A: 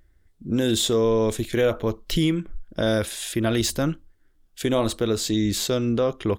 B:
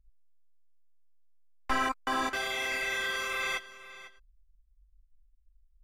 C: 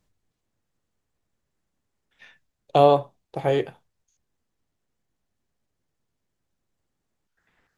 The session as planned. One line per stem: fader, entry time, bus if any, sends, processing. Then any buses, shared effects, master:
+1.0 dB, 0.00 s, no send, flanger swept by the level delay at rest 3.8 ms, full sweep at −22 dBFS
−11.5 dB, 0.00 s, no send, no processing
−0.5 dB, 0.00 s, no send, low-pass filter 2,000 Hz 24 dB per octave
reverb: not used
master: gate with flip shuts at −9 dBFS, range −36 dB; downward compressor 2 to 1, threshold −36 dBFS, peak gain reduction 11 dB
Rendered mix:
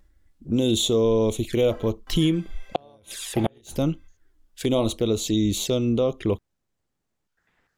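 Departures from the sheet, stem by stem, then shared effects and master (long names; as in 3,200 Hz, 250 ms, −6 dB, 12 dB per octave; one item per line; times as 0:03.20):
stem B −11.5 dB → −22.0 dB
stem C: missing low-pass filter 2,000 Hz 24 dB per octave
master: missing downward compressor 2 to 1, threshold −36 dBFS, peak gain reduction 11 dB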